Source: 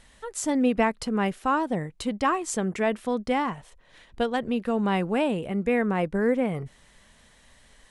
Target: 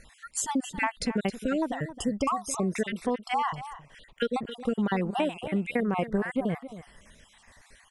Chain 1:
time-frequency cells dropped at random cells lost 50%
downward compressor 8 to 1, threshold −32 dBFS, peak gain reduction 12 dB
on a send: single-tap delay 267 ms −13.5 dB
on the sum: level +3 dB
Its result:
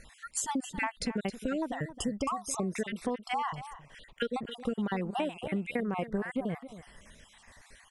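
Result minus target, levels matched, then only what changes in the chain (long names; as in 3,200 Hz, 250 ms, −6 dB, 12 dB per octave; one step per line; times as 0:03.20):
downward compressor: peak gain reduction +5 dB
change: downward compressor 8 to 1, threshold −26 dBFS, peak gain reduction 6.5 dB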